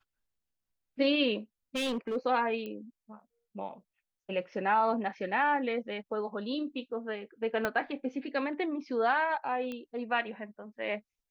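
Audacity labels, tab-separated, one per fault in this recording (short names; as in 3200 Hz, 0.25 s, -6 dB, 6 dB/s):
1.750000	2.170000	clipped -29 dBFS
2.660000	2.660000	pop -28 dBFS
7.650000	7.650000	pop -16 dBFS
9.720000	9.720000	pop -26 dBFS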